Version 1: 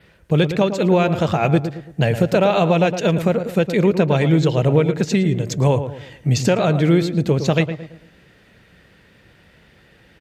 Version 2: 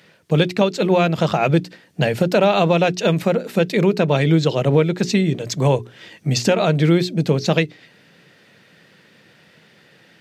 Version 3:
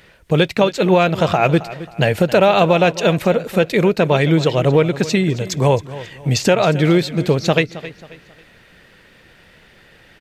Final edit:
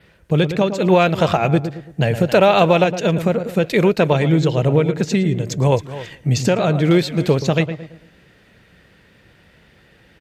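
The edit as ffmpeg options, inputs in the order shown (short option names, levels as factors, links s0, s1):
-filter_complex "[2:a]asplit=5[s0][s1][s2][s3][s4];[0:a]asplit=6[s5][s6][s7][s8][s9][s10];[s5]atrim=end=0.882[s11];[s0]atrim=start=0.878:end=1.372[s12];[s6]atrim=start=1.368:end=2.282[s13];[s1]atrim=start=2.278:end=2.842[s14];[s7]atrim=start=2.838:end=3.642[s15];[s2]atrim=start=3.638:end=4.132[s16];[s8]atrim=start=4.128:end=5.722[s17];[s3]atrim=start=5.718:end=6.152[s18];[s9]atrim=start=6.148:end=6.912[s19];[s4]atrim=start=6.908:end=7.422[s20];[s10]atrim=start=7.418[s21];[s11][s12]acrossfade=d=0.004:c1=hsin:c2=hsin[s22];[s22][s13]acrossfade=d=0.004:c1=hsin:c2=hsin[s23];[s23][s14]acrossfade=d=0.004:c1=hsin:c2=hsin[s24];[s24][s15]acrossfade=d=0.004:c1=hsin:c2=hsin[s25];[s25][s16]acrossfade=d=0.004:c1=hsin:c2=hsin[s26];[s26][s17]acrossfade=d=0.004:c1=hsin:c2=hsin[s27];[s27][s18]acrossfade=d=0.004:c1=hsin:c2=hsin[s28];[s28][s19]acrossfade=d=0.004:c1=hsin:c2=hsin[s29];[s29][s20]acrossfade=d=0.004:c1=hsin:c2=hsin[s30];[s30][s21]acrossfade=d=0.004:c1=hsin:c2=hsin"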